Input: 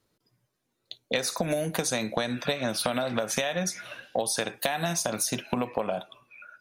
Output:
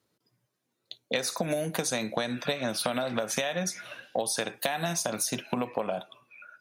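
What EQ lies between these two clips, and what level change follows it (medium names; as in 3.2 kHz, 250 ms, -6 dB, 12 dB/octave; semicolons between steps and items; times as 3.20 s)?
high-pass 100 Hz; -1.5 dB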